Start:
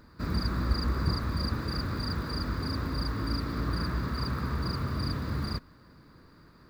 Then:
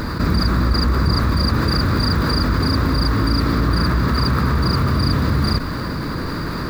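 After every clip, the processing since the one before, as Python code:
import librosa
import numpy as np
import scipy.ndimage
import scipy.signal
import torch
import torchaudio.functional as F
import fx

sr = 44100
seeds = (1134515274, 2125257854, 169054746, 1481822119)

y = fx.env_flatten(x, sr, amount_pct=70)
y = F.gain(torch.from_numpy(y), 7.5).numpy()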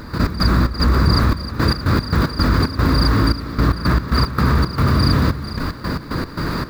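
y = fx.step_gate(x, sr, bpm=113, pattern='.x.xx.xxxx..x.x', floor_db=-12.0, edge_ms=4.5)
y = F.gain(torch.from_numpy(y), 2.5).numpy()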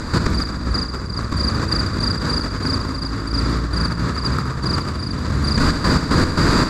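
y = fx.over_compress(x, sr, threshold_db=-20.0, ratio=-0.5)
y = fx.lowpass_res(y, sr, hz=7500.0, q=3.5)
y = fx.echo_feedback(y, sr, ms=70, feedback_pct=58, wet_db=-9)
y = F.gain(torch.from_numpy(y), 1.5).numpy()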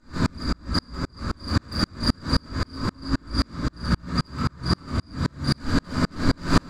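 y = 10.0 ** (-13.0 / 20.0) * np.tanh(x / 10.0 ** (-13.0 / 20.0))
y = fx.room_shoebox(y, sr, seeds[0], volume_m3=350.0, walls='furnished', distance_m=2.6)
y = fx.tremolo_decay(y, sr, direction='swelling', hz=3.8, depth_db=40)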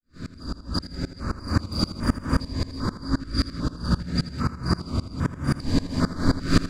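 y = fx.fade_in_head(x, sr, length_s=1.05)
y = fx.echo_feedback(y, sr, ms=81, feedback_pct=47, wet_db=-13.5)
y = fx.filter_held_notch(y, sr, hz=2.5, low_hz=880.0, high_hz=4200.0)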